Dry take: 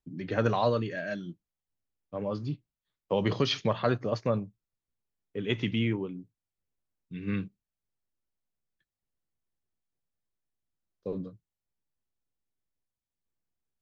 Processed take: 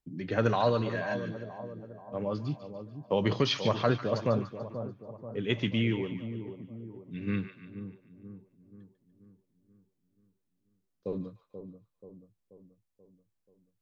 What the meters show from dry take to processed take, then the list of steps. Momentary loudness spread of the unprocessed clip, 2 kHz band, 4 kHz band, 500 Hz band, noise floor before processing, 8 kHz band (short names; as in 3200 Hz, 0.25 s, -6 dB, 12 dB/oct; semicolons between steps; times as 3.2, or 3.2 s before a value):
15 LU, +0.5 dB, +0.5 dB, +0.5 dB, under -85 dBFS, n/a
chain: split-band echo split 1000 Hz, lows 0.483 s, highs 0.146 s, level -10 dB